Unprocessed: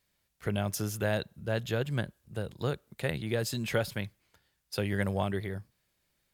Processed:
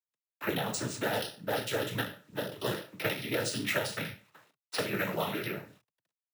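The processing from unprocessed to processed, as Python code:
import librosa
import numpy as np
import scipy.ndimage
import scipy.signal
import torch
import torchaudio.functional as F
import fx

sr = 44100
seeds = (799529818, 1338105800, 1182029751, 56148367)

y = fx.spec_trails(x, sr, decay_s=0.35)
y = fx.highpass(y, sr, hz=250.0, slope=6)
y = fx.env_lowpass(y, sr, base_hz=1300.0, full_db=-28.0)
y = fx.high_shelf(y, sr, hz=2800.0, db=6.5)
y = fx.quant_dither(y, sr, seeds[0], bits=12, dither='none')
y = fx.noise_vocoder(y, sr, seeds[1], bands=12)
y = np.repeat(y[::3], 3)[:len(y)]
y = fx.band_squash(y, sr, depth_pct=70)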